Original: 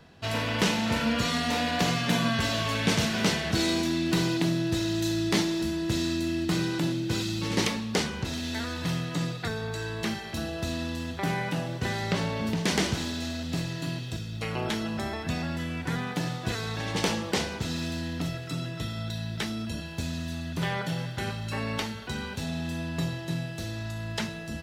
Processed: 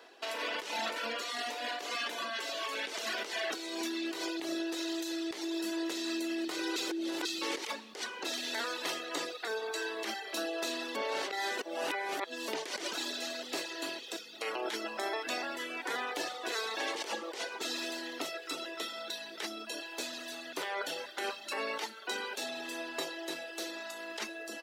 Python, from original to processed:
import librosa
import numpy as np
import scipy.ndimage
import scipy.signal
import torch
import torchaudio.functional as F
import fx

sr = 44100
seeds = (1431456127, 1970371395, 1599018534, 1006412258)

y = fx.edit(x, sr, fx.reverse_span(start_s=6.76, length_s=0.49),
    fx.reverse_span(start_s=10.95, length_s=1.53), tone=tone)
y = fx.dereverb_blind(y, sr, rt60_s=0.78)
y = scipy.signal.sosfilt(scipy.signal.butter(6, 330.0, 'highpass', fs=sr, output='sos'), y)
y = fx.over_compress(y, sr, threshold_db=-36.0, ratio=-1.0)